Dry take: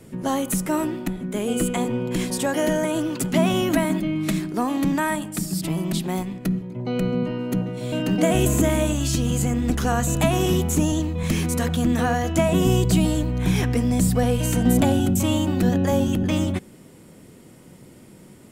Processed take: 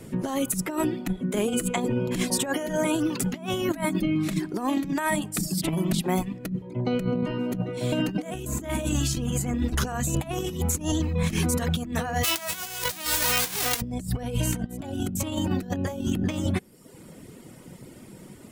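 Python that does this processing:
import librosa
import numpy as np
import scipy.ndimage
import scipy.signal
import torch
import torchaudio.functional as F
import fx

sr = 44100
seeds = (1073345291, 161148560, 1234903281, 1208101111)

y = fx.envelope_flatten(x, sr, power=0.1, at=(12.23, 13.8), fade=0.02)
y = fx.dereverb_blind(y, sr, rt60_s=0.72)
y = fx.over_compress(y, sr, threshold_db=-26.0, ratio=-0.5)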